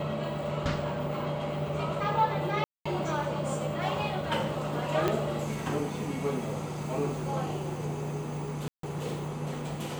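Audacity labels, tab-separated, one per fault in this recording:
2.640000	2.850000	dropout 215 ms
5.080000	5.080000	pop -13 dBFS
8.680000	8.830000	dropout 153 ms

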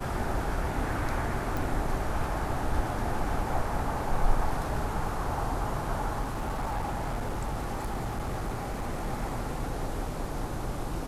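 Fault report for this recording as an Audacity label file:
1.570000	1.570000	pop
6.210000	9.080000	clipped -27.5 dBFS

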